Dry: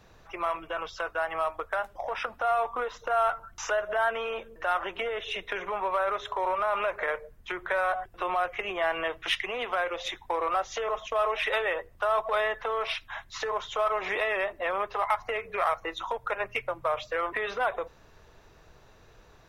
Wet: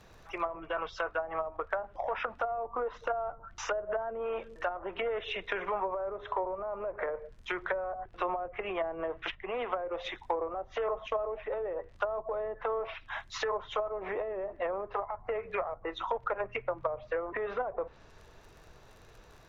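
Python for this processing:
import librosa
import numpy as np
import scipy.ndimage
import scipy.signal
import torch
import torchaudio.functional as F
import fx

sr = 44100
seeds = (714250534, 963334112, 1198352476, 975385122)

y = fx.dmg_crackle(x, sr, seeds[0], per_s=55.0, level_db=-46.0)
y = fx.env_lowpass_down(y, sr, base_hz=460.0, full_db=-24.5)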